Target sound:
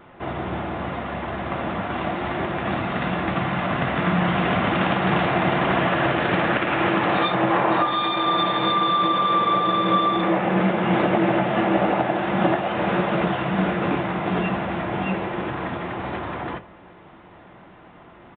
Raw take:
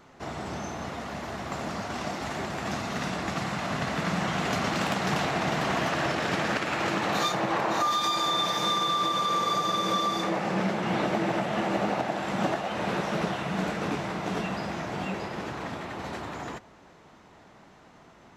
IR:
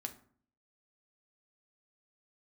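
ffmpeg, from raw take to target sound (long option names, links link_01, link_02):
-filter_complex "[0:a]asplit=2[link_01][link_02];[1:a]atrim=start_sample=2205,asetrate=61740,aresample=44100,lowpass=4100[link_03];[link_02][link_03]afir=irnorm=-1:irlink=0,volume=7.5dB[link_04];[link_01][link_04]amix=inputs=2:normalize=0,aresample=8000,aresample=44100"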